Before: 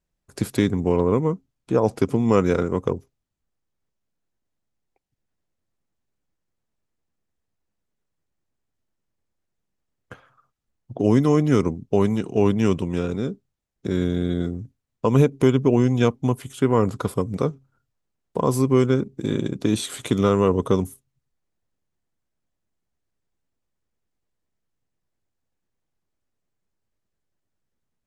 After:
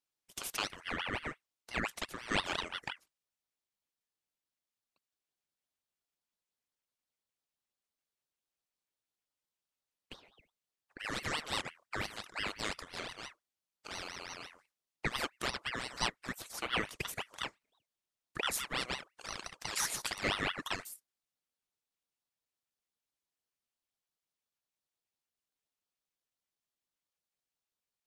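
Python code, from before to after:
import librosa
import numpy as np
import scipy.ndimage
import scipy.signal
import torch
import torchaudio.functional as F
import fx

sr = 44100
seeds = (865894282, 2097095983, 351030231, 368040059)

y = scipy.signal.sosfilt(scipy.signal.butter(2, 1200.0, 'highpass', fs=sr, output='sos'), x)
y = fx.ring_lfo(y, sr, carrier_hz=1600.0, swing_pct=55, hz=5.8)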